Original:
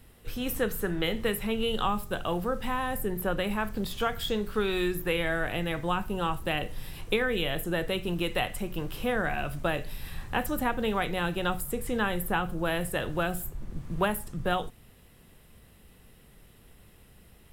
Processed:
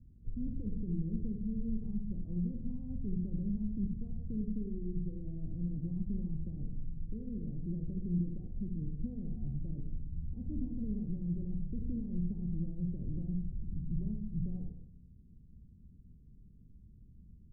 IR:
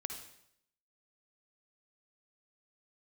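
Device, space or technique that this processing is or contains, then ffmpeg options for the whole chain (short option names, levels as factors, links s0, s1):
club heard from the street: -filter_complex "[0:a]alimiter=limit=0.075:level=0:latency=1:release=20,lowpass=f=240:w=0.5412,lowpass=f=240:w=1.3066[s0];[1:a]atrim=start_sample=2205[s1];[s0][s1]afir=irnorm=-1:irlink=0,volume=1.12"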